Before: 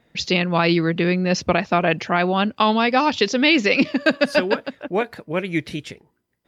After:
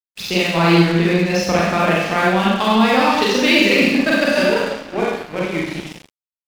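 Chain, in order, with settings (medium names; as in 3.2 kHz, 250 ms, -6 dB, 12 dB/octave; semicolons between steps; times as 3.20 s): Schroeder reverb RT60 1.1 s, combs from 32 ms, DRR -6 dB; crossover distortion -26.5 dBFS; trim -2 dB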